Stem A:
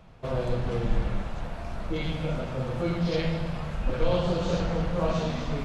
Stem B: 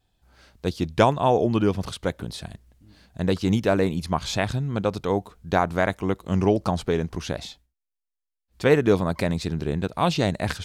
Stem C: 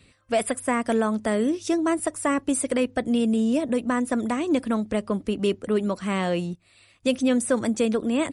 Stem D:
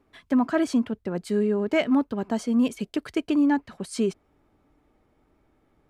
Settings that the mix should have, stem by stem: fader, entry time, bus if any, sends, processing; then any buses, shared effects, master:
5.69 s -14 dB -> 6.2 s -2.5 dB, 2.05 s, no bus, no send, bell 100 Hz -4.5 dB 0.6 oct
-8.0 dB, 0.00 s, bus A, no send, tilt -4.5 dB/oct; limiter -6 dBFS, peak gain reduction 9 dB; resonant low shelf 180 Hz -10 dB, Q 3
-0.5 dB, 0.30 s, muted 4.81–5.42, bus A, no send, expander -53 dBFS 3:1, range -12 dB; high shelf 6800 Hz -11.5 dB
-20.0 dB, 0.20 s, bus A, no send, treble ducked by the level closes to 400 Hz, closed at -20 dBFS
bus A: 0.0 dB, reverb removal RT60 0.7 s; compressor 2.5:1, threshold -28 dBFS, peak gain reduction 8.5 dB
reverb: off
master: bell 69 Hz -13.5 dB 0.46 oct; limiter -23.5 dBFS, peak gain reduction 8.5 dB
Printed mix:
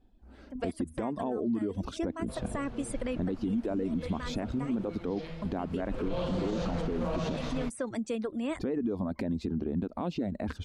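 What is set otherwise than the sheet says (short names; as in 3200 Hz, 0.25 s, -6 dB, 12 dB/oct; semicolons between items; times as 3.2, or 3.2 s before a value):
stem B -8.0 dB -> -1.0 dB; stem C -0.5 dB -> -7.5 dB; master: missing bell 69 Hz -13.5 dB 0.46 oct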